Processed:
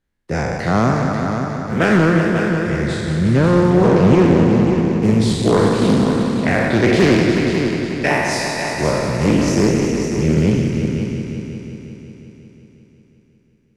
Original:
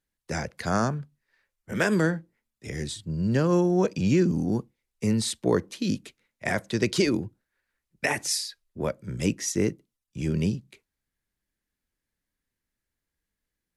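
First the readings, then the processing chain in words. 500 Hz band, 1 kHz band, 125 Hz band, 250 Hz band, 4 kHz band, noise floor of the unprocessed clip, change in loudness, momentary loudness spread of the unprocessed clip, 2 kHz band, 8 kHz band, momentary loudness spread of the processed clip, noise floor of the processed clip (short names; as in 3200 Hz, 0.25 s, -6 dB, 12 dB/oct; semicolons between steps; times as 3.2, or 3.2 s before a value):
+12.0 dB, +13.0 dB, +12.5 dB, +12.0 dB, +7.5 dB, under -85 dBFS, +11.0 dB, 12 LU, +11.0 dB, +3.5 dB, 10 LU, -55 dBFS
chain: spectral trails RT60 1.68 s; LPF 2300 Hz 6 dB/oct; low shelf 240 Hz +4.5 dB; hard clip -13.5 dBFS, distortion -19 dB; on a send: multi-head echo 0.18 s, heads all three, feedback 53%, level -10 dB; on the sum: Doppler distortion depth 0.39 ms; gain +6 dB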